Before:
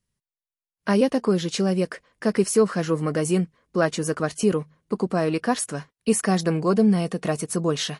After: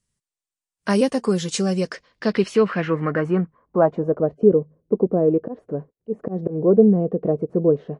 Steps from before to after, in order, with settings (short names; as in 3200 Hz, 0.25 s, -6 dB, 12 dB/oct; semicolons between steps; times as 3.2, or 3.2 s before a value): low-pass sweep 8400 Hz -> 480 Hz, 1.57–4.36; 1.09–1.86 notch comb 320 Hz; 5.15–6.61 auto swell 0.155 s; gain +1 dB